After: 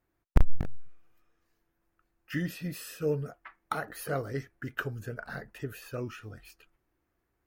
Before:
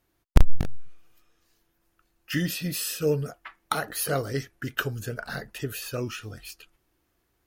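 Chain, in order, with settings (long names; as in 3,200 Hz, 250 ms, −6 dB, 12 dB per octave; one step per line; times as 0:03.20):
flat-topped bell 6,300 Hz −9 dB 2.6 octaves
level −5 dB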